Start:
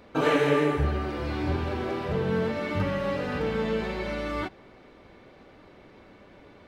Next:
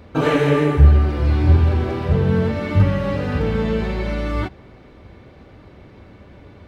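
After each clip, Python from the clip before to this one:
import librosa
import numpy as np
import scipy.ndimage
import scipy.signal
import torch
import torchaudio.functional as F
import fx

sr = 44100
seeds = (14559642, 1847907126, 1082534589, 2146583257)

y = fx.peak_eq(x, sr, hz=78.0, db=14.5, octaves=2.1)
y = F.gain(torch.from_numpy(y), 3.5).numpy()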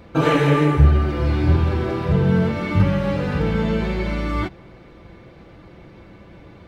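y = x + 0.41 * np.pad(x, (int(5.9 * sr / 1000.0), 0))[:len(x)]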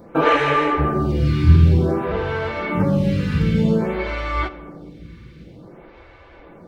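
y = fx.rev_fdn(x, sr, rt60_s=2.3, lf_ratio=1.25, hf_ratio=0.75, size_ms=37.0, drr_db=11.5)
y = fx.stagger_phaser(y, sr, hz=0.53)
y = F.gain(torch.from_numpy(y), 4.0).numpy()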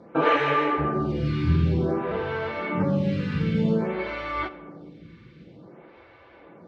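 y = fx.bandpass_edges(x, sr, low_hz=120.0, high_hz=4700.0)
y = F.gain(torch.from_numpy(y), -4.5).numpy()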